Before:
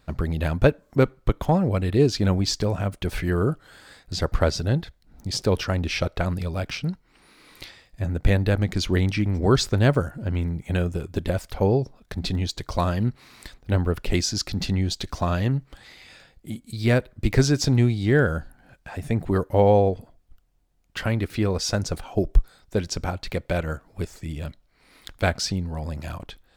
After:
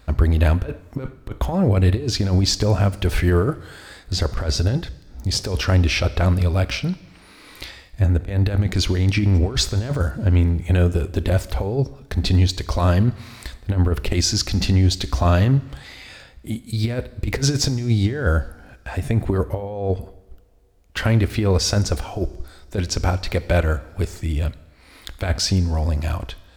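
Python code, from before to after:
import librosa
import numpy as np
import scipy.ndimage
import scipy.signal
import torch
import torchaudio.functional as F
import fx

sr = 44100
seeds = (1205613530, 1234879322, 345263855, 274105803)

y = fx.peak_eq(x, sr, hz=160.0, db=-8.0, octaves=0.25)
y = fx.over_compress(y, sr, threshold_db=-23.0, ratio=-0.5)
y = fx.peak_eq(y, sr, hz=62.0, db=12.5, octaves=0.37)
y = fx.rev_double_slope(y, sr, seeds[0], early_s=0.99, late_s=3.3, knee_db=-19, drr_db=17.0)
y = fx.hpss(y, sr, part='harmonic', gain_db=4)
y = y * librosa.db_to_amplitude(2.5)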